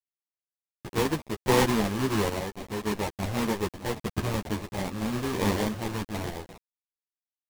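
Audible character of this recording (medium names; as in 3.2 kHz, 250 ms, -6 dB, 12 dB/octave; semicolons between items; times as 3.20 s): a quantiser's noise floor 6-bit, dither none; random-step tremolo 3.5 Hz; aliases and images of a low sample rate 1.4 kHz, jitter 20%; a shimmering, thickened sound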